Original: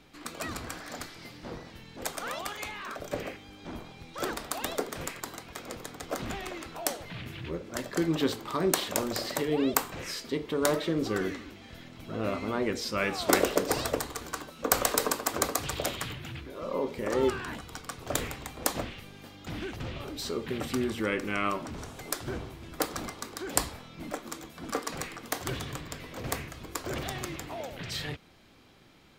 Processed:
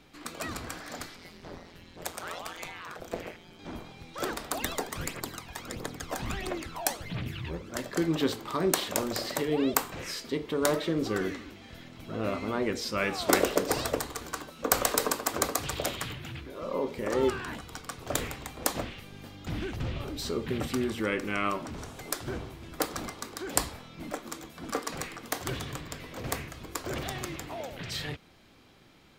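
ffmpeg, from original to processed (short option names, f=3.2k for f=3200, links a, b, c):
-filter_complex "[0:a]asettb=1/sr,asplit=3[a][b][c];[a]atrim=end=1.164[d];[b]atrim=start=1.16:end=3.59,asetpts=PTS-STARTPTS,afade=t=in:d=0.004:c=qsin,afade=t=out:st=2.426:d=0.004:c=qsin,aeval=exprs='val(0)*sin(2*PI*86*n/s)':c=same[e];[c]atrim=start=3.586[f];[d][e]acrossfade=d=0.004:c1=hsin:c2=qsin[g];[g][f]acrossfade=d=0.004:c1=qsin:c2=hsin,asettb=1/sr,asplit=3[h][i][j];[h]atrim=end=4.524[k];[i]atrim=start=4.52:end=7.71,asetpts=PTS-STARTPTS,afade=t=in:d=0.004:c=qsin,afade=t=out:st=3.186:d=0.004:c=qsin,aphaser=in_gain=1:out_gain=1:delay=1.3:decay=0.57:speed=1.5:type=triangular[l];[j]atrim=start=7.706[m];[k][l]acrossfade=d=0.004:c1=hsin:c2=qsin[n];[n][m]acrossfade=d=0.004:c1=qsin:c2=hsin,asettb=1/sr,asplit=3[o][p][q];[o]atrim=end=19.124[r];[p]atrim=start=19.12:end=20.67,asetpts=PTS-STARTPTS,afade=t=in:d=0.004:c=qsin,afade=t=out:st=1.546:d=0.004:c=qsin,lowshelf=f=180:g=7[s];[q]atrim=start=20.666[t];[r][s]acrossfade=d=0.004:c1=hsin:c2=qsin[u];[u][t]acrossfade=d=0.004:c1=qsin:c2=hsin"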